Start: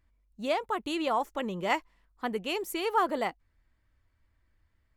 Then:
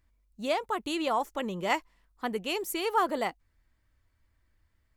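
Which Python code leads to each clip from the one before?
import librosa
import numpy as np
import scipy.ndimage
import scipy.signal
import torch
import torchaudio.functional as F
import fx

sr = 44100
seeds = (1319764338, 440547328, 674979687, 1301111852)

y = fx.bass_treble(x, sr, bass_db=0, treble_db=4)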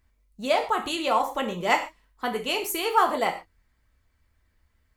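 y = fx.hpss(x, sr, part='percussive', gain_db=5)
y = fx.rev_gated(y, sr, seeds[0], gate_ms=160, shape='falling', drr_db=3.0)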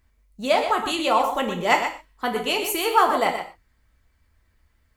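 y = x + 10.0 ** (-8.5 / 20.0) * np.pad(x, (int(123 * sr / 1000.0), 0))[:len(x)]
y = F.gain(torch.from_numpy(y), 3.0).numpy()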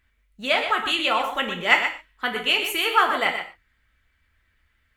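y = fx.band_shelf(x, sr, hz=2200.0, db=10.5, octaves=1.7)
y = F.gain(torch.from_numpy(y), -5.0).numpy()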